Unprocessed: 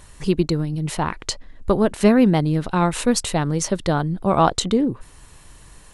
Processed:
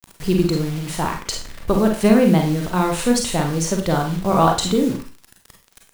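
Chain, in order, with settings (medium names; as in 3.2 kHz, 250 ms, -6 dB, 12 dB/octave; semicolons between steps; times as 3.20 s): bit crusher 6-bit; Schroeder reverb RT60 0.36 s, combs from 33 ms, DRR 2 dB; trim -1 dB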